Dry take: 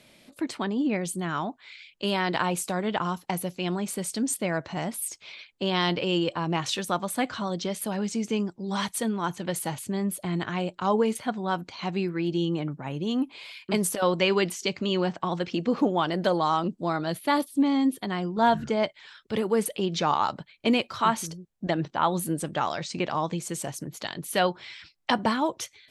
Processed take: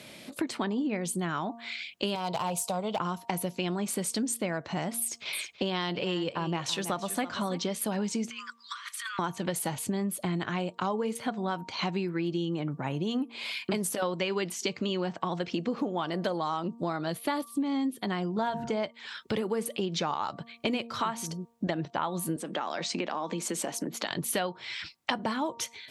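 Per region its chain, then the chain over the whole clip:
2.15–3 fixed phaser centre 730 Hz, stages 4 + hard clip -24.5 dBFS
5–7.61 gate with hold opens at -37 dBFS, closes at -46 dBFS + echo 0.327 s -14.5 dB
8.3–9.19 steep high-pass 1100 Hz 96 dB/oct + high shelf 4400 Hz -11.5 dB + negative-ratio compressor -47 dBFS
22.36–24.11 steep high-pass 190 Hz + high shelf 5700 Hz -7 dB + compressor 2.5:1, threshold -34 dBFS
whole clip: HPF 87 Hz; de-hum 232.7 Hz, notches 5; compressor 6:1, threshold -37 dBFS; gain +8.5 dB

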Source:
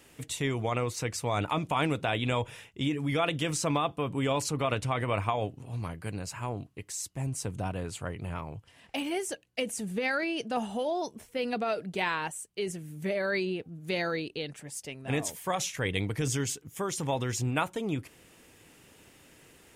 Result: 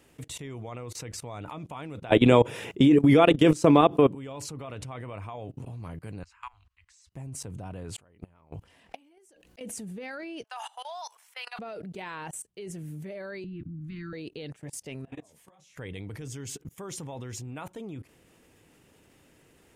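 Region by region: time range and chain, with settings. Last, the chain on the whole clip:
2.09–4.15 HPF 120 Hz + bell 360 Hz +8.5 dB 1.3 oct + fast leveller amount 50%
6.23–7.12 inverse Chebyshev band-stop 120–610 Hz + air absorption 100 m
7.96–9.61 bell 120 Hz -14 dB 0.44 oct + flipped gate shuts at -30 dBFS, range -24 dB + fast leveller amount 70%
10.44–11.59 steep high-pass 860 Hz + sustainer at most 81 dB/s
13.44–14.13 Chebyshev band-stop 340–1100 Hz, order 5 + RIAA curve playback + notches 50/100/150/200/250/300 Hz
15.05–15.76 LPF 11000 Hz + compressor 4:1, threshold -41 dBFS + detuned doubles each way 40 cents
whole clip: tilt shelf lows +3 dB, about 1100 Hz; level quantiser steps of 22 dB; gain +5.5 dB

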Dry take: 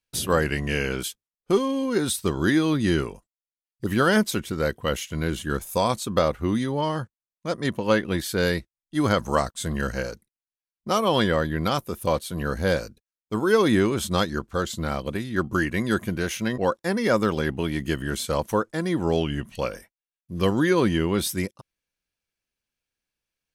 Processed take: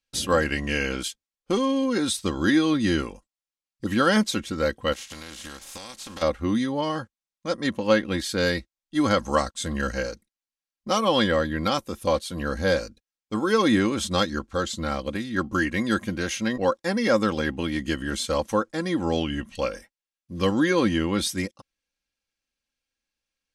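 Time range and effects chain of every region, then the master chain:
4.92–6.21 spectral contrast lowered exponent 0.45 + compressor 20:1, threshold -34 dBFS
whole clip: LPF 6400 Hz 12 dB/oct; high shelf 4200 Hz +7.5 dB; comb 3.7 ms, depth 50%; gain -1.5 dB

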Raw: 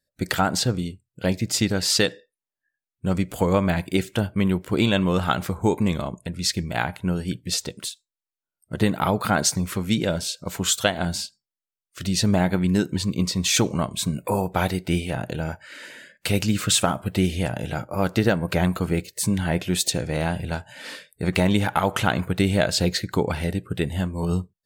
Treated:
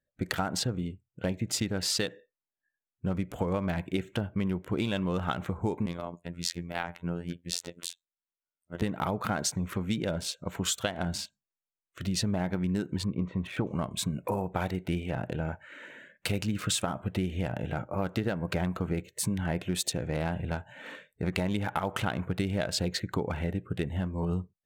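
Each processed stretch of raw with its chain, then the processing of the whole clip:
5.86–8.82 low shelf 150 Hz -10 dB + robotiser 86.1 Hz
13.04–13.67 LPF 1600 Hz + mismatched tape noise reduction encoder only
whole clip: Wiener smoothing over 9 samples; compressor 4:1, threshold -23 dBFS; gain -3.5 dB

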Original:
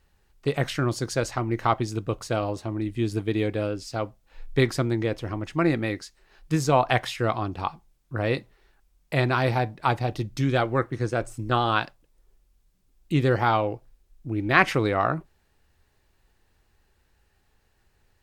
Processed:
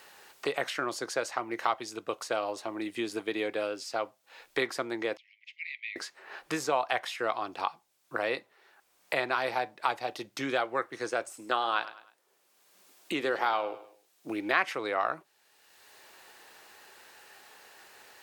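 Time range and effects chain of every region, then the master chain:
5.17–5.96 steep high-pass 2100 Hz 96 dB/oct + tape spacing loss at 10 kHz 42 dB
11.27–14.29 HPF 190 Hz + feedback echo 0.102 s, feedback 29%, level -16.5 dB
whole clip: HPF 540 Hz 12 dB/oct; three-band squash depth 70%; gain -2.5 dB

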